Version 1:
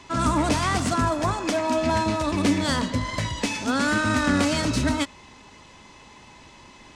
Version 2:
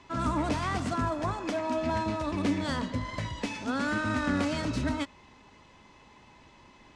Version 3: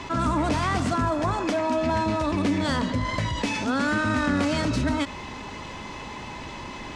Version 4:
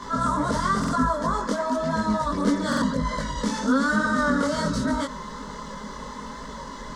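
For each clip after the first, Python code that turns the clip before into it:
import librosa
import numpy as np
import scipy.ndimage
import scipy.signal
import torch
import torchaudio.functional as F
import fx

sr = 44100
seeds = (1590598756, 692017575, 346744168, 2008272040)

y1 = fx.lowpass(x, sr, hz=3100.0, slope=6)
y1 = y1 * librosa.db_to_amplitude(-6.5)
y2 = fx.env_flatten(y1, sr, amount_pct=50)
y2 = y2 * librosa.db_to_amplitude(3.0)
y3 = fx.chorus_voices(y2, sr, voices=2, hz=1.0, base_ms=21, depth_ms=3.0, mix_pct=55)
y3 = fx.fixed_phaser(y3, sr, hz=500.0, stages=8)
y3 = fx.buffer_glitch(y3, sr, at_s=(0.79, 2.68), block=2048, repeats=2)
y3 = y3 * librosa.db_to_amplitude(7.0)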